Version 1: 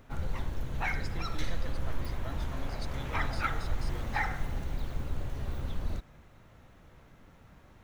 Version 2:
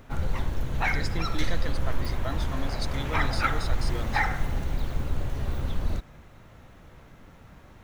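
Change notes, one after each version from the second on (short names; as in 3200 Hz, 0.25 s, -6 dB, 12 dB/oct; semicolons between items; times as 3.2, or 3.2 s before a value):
speech +10.5 dB; background +6.0 dB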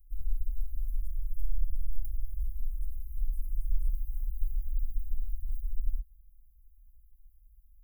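master: add inverse Chebyshev band-stop 150–4900 Hz, stop band 60 dB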